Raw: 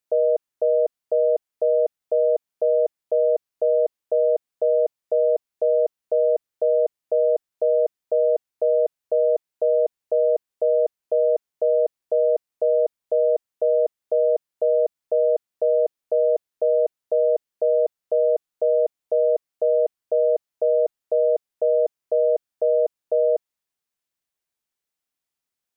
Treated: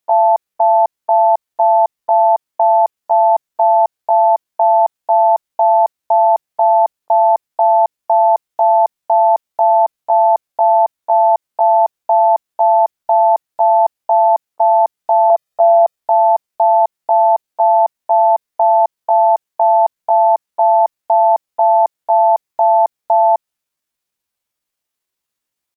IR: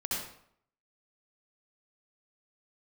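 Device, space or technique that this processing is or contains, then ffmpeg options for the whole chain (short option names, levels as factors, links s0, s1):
chipmunk voice: -filter_complex "[0:a]asettb=1/sr,asplit=3[s0][s1][s2];[s0]atrim=end=15.304[s3];[s1]atrim=start=15.3:end=15.98,asetpts=PTS-STARTPTS,afade=t=in:d=0.004:c=qsin,afade=t=out:st=0.676:d=0.004:c=qsin,aecho=1:1:2.3:0.78,atrim=end_sample=29988[s4];[s2]atrim=start=15.976[s5];[s3][s4]acrossfade=d=0.004:c1=hsin:c2=qsin[s6];[s6][s5]acrossfade=d=0.004:c1=qsin:c2=hsin,asetrate=62367,aresample=44100,atempo=0.707107,volume=2.51"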